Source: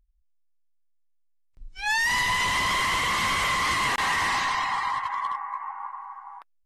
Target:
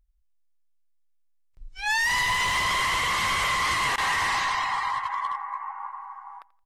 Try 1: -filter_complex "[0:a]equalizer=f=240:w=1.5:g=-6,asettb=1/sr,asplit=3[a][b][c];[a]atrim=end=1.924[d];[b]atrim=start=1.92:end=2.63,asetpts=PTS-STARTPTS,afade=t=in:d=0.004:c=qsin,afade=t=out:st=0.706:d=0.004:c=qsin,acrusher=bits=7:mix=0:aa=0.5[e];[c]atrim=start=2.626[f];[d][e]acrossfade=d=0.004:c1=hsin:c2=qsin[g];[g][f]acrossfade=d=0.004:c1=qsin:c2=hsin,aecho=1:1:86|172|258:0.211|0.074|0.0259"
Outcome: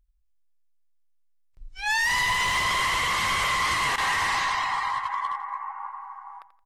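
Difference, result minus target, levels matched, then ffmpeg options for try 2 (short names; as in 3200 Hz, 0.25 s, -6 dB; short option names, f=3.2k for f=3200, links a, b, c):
echo-to-direct +7.5 dB
-filter_complex "[0:a]equalizer=f=240:w=1.5:g=-6,asettb=1/sr,asplit=3[a][b][c];[a]atrim=end=1.924[d];[b]atrim=start=1.92:end=2.63,asetpts=PTS-STARTPTS,afade=t=in:d=0.004:c=qsin,afade=t=out:st=0.706:d=0.004:c=qsin,acrusher=bits=7:mix=0:aa=0.5[e];[c]atrim=start=2.626[f];[d][e]acrossfade=d=0.004:c1=hsin:c2=qsin[g];[g][f]acrossfade=d=0.004:c1=qsin:c2=hsin,aecho=1:1:86|172|258:0.0891|0.0312|0.0109"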